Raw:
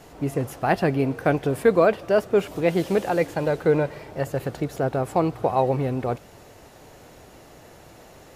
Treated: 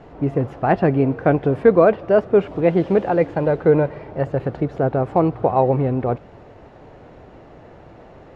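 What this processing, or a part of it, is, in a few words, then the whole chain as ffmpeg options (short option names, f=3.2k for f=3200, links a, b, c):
phone in a pocket: -af "lowpass=3.3k,highshelf=f=2k:g=-11.5,volume=5.5dB"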